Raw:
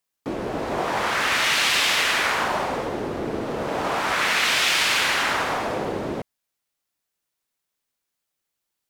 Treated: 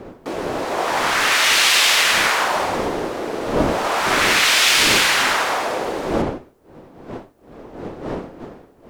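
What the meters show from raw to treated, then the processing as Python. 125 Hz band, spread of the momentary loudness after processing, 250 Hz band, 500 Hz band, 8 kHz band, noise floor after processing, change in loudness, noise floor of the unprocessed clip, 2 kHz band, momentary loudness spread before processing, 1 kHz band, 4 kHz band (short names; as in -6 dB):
+4.5 dB, 18 LU, +5.0 dB, +5.0 dB, +8.0 dB, -50 dBFS, +5.5 dB, -82 dBFS, +5.0 dB, 11 LU, +4.5 dB, +6.0 dB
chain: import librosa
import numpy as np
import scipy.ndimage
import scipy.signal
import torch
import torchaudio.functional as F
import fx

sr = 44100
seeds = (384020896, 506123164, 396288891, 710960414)

y = fx.dmg_wind(x, sr, seeds[0], corner_hz=300.0, level_db=-27.0)
y = fx.bass_treble(y, sr, bass_db=-14, treble_db=4)
y = y * librosa.db_to_amplitude(4.5)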